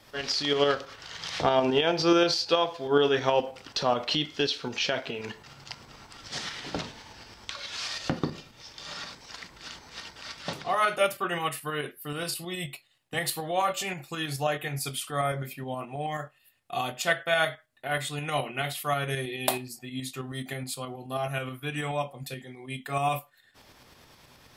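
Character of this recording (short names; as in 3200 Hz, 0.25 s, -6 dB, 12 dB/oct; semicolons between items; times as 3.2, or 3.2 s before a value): tremolo saw up 9.4 Hz, depth 45%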